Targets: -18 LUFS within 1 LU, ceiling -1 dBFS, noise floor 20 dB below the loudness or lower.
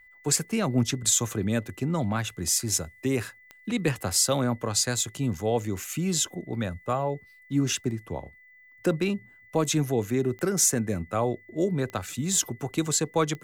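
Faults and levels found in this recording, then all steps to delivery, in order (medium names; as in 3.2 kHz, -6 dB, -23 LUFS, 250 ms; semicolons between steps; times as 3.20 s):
clicks found 4; steady tone 2 kHz; tone level -52 dBFS; loudness -26.5 LUFS; peak level -12.0 dBFS; loudness target -18.0 LUFS
-> de-click; band-stop 2 kHz, Q 30; trim +8.5 dB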